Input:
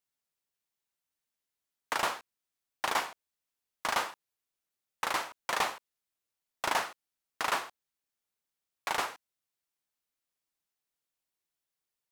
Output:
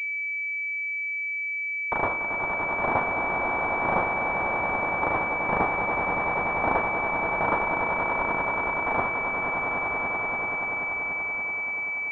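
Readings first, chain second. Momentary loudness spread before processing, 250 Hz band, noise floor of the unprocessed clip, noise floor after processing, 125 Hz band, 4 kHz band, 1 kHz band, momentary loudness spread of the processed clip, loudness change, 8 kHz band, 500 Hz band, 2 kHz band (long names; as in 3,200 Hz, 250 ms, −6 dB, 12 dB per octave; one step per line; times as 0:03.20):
10 LU, +17.5 dB, below −85 dBFS, −30 dBFS, +21.5 dB, below −10 dB, +10.0 dB, 3 LU, +8.0 dB, below −20 dB, +14.0 dB, +14.5 dB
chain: on a send: echo that builds up and dies away 96 ms, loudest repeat 8, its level −7 dB
on the sum: switching amplifier with a slow clock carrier 2,300 Hz
level +7.5 dB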